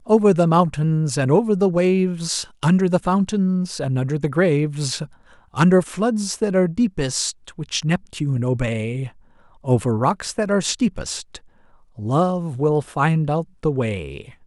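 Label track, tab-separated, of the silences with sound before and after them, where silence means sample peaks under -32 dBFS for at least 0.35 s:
5.050000	5.540000	silence
9.080000	9.650000	silence
11.370000	11.980000	silence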